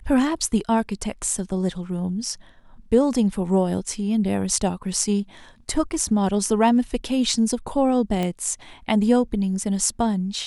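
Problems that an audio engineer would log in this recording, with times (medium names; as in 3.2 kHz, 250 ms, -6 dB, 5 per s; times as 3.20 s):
8.23 s: pop -13 dBFS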